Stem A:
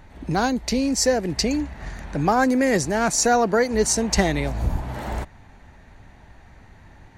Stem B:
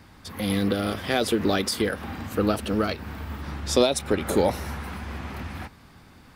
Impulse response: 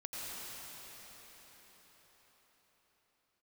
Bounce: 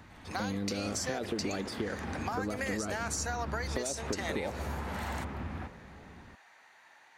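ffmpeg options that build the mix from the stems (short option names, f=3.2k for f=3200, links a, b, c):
-filter_complex "[0:a]highpass=950,alimiter=limit=-16.5dB:level=0:latency=1:release=92,acompressor=threshold=-28dB:ratio=6,volume=-2dB[a];[1:a]lowpass=f=1.3k:p=1,acompressor=threshold=-24dB:ratio=6,volume=-4dB,asplit=2[b][c];[c]volume=-13dB[d];[2:a]atrim=start_sample=2205[e];[d][e]afir=irnorm=-1:irlink=0[f];[a][b][f]amix=inputs=3:normalize=0,acompressor=threshold=-30dB:ratio=6"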